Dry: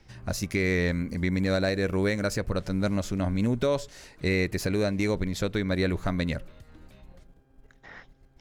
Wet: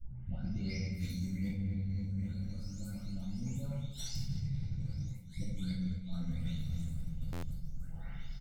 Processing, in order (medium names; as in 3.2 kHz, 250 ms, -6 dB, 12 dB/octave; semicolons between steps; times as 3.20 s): delay that grows with frequency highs late, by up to 617 ms; Doppler pass-by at 3.57 s, 9 m/s, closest 2.4 m; inverted gate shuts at -37 dBFS, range -34 dB; tone controls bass +11 dB, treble +13 dB; comb 1.4 ms, depth 75%; filtered feedback delay 270 ms, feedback 53%, low-pass 2 kHz, level -13 dB; simulated room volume 600 m³, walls mixed, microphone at 2.6 m; reverse; compression 12:1, threshold -49 dBFS, peak gain reduction 24.5 dB; reverse; fifteen-band graphic EQ 630 Hz -10 dB, 1.6 kHz -9 dB, 10 kHz -9 dB; buffer glitch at 7.32 s, samples 512, times 8; trim +16 dB